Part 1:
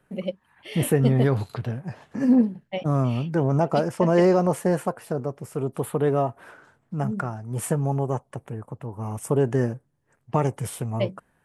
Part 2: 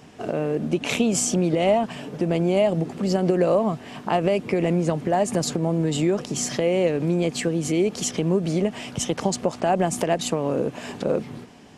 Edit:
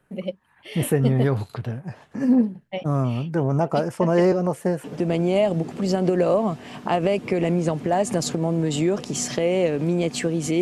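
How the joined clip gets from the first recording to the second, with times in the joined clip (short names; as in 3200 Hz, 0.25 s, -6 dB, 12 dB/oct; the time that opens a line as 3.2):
part 1
4.32–4.84 rotary speaker horn 5 Hz
4.84 switch to part 2 from 2.05 s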